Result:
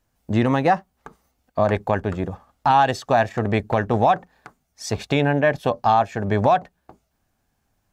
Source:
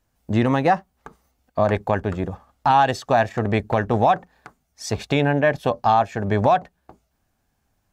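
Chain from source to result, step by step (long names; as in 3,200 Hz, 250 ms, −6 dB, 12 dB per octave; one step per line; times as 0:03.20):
parametric band 63 Hz −4 dB 0.4 octaves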